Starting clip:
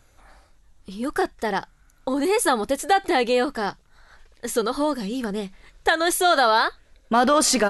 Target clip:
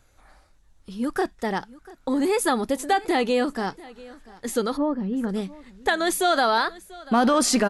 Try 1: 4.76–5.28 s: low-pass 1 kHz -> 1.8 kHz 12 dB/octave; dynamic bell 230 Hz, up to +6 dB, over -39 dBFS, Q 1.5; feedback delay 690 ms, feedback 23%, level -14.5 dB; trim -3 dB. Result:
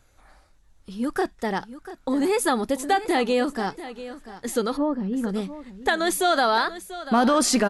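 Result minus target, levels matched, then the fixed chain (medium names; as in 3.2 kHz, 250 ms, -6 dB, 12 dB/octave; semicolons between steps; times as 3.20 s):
echo-to-direct +6.5 dB
4.76–5.28 s: low-pass 1 kHz -> 1.8 kHz 12 dB/octave; dynamic bell 230 Hz, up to +6 dB, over -39 dBFS, Q 1.5; feedback delay 690 ms, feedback 23%, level -21 dB; trim -3 dB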